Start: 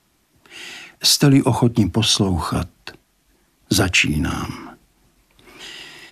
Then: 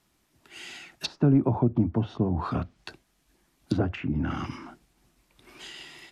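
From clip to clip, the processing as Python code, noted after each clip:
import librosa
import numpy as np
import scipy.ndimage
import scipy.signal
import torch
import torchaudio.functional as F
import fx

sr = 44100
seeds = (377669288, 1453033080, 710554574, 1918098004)

y = fx.env_lowpass_down(x, sr, base_hz=850.0, full_db=-14.0)
y = F.gain(torch.from_numpy(y), -7.0).numpy()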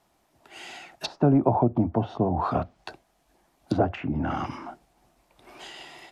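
y = fx.peak_eq(x, sr, hz=710.0, db=13.0, octaves=1.2)
y = F.gain(torch.from_numpy(y), -1.5).numpy()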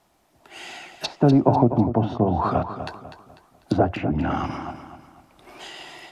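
y = fx.echo_feedback(x, sr, ms=248, feedback_pct=38, wet_db=-10.5)
y = F.gain(torch.from_numpy(y), 3.5).numpy()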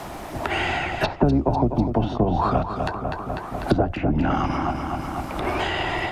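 y = fx.octave_divider(x, sr, octaves=2, level_db=-6.0)
y = fx.band_squash(y, sr, depth_pct=100)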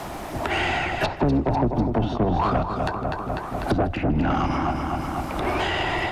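y = 10.0 ** (-16.0 / 20.0) * np.tanh(x / 10.0 ** (-16.0 / 20.0))
y = fx.echo_feedback(y, sr, ms=157, feedback_pct=52, wet_db=-20.0)
y = F.gain(torch.from_numpy(y), 1.5).numpy()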